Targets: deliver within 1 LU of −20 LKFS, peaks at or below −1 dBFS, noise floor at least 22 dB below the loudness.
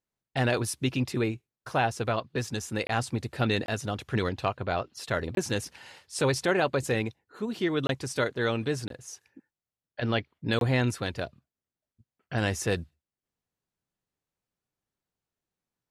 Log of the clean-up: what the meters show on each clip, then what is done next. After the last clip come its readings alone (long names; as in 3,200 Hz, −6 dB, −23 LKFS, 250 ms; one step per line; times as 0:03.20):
number of dropouts 6; longest dropout 22 ms; integrated loudness −29.5 LKFS; sample peak −12.0 dBFS; target loudness −20.0 LKFS
→ repair the gap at 0:02.87/0:03.66/0:05.35/0:07.87/0:08.88/0:10.59, 22 ms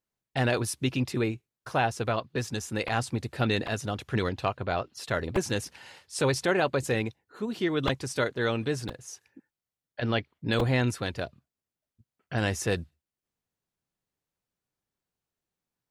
number of dropouts 0; integrated loudness −29.5 LKFS; sample peak −12.0 dBFS; target loudness −20.0 LKFS
→ level +9.5 dB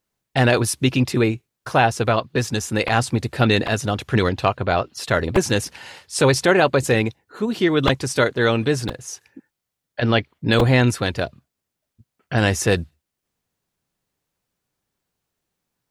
integrated loudness −20.0 LKFS; sample peak −2.5 dBFS; background noise floor −82 dBFS